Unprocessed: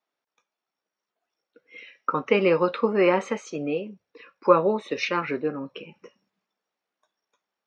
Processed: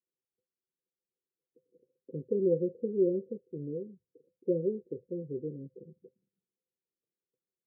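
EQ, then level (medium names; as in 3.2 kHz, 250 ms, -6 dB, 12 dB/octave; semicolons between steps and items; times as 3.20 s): rippled Chebyshev low-pass 530 Hz, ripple 9 dB; bass shelf 110 Hz +7.5 dB; -3.5 dB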